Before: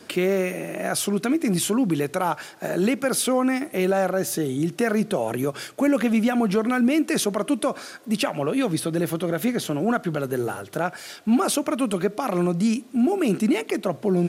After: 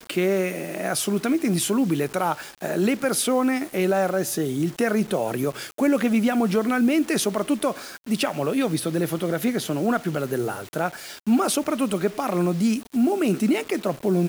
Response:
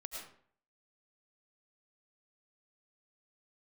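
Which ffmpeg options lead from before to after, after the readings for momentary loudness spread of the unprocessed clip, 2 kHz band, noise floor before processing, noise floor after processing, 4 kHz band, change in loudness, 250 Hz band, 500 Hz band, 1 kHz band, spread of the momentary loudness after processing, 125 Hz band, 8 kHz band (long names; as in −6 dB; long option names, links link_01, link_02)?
7 LU, 0.0 dB, −45 dBFS, −44 dBFS, 0.0 dB, 0.0 dB, 0.0 dB, 0.0 dB, 0.0 dB, 7 LU, 0.0 dB, 0.0 dB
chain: -af "acrusher=bits=6:mix=0:aa=0.000001"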